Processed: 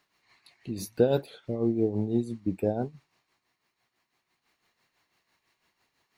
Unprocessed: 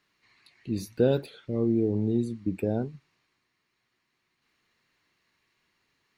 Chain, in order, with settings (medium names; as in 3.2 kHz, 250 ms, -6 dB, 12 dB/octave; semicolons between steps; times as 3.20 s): treble shelf 5.7 kHz +7.5 dB; tremolo 6 Hz, depth 62%; peaking EQ 750 Hz +8.5 dB 0.96 oct